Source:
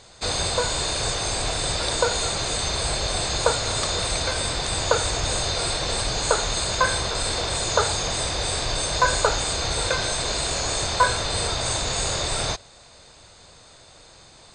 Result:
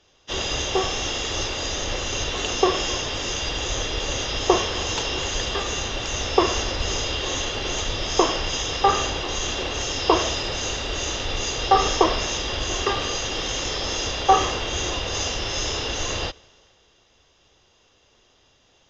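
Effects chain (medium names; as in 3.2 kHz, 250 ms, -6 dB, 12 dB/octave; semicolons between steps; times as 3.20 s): tape speed -23%; three bands expanded up and down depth 40%; trim -1 dB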